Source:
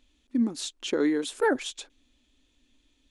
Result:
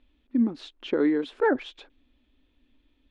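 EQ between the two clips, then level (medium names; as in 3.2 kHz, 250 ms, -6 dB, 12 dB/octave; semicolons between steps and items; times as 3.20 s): distance through air 360 m; +2.5 dB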